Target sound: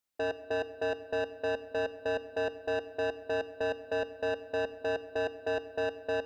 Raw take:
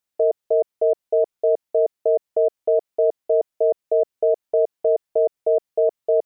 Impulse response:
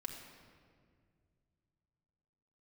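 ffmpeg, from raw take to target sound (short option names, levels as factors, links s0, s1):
-filter_complex "[0:a]asoftclip=type=tanh:threshold=0.0531,asplit=2[s0][s1];[1:a]atrim=start_sample=2205[s2];[s1][s2]afir=irnorm=-1:irlink=0,volume=0.708[s3];[s0][s3]amix=inputs=2:normalize=0,volume=0.501"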